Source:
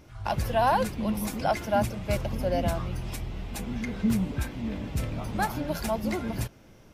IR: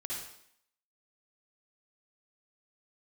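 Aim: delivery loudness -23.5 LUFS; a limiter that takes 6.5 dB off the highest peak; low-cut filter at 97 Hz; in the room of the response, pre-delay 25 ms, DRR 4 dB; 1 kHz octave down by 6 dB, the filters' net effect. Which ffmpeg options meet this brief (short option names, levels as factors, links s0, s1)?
-filter_complex "[0:a]highpass=97,equalizer=f=1000:t=o:g=-8.5,alimiter=limit=0.0841:level=0:latency=1,asplit=2[s0][s1];[1:a]atrim=start_sample=2205,adelay=25[s2];[s1][s2]afir=irnorm=-1:irlink=0,volume=0.562[s3];[s0][s3]amix=inputs=2:normalize=0,volume=2.66"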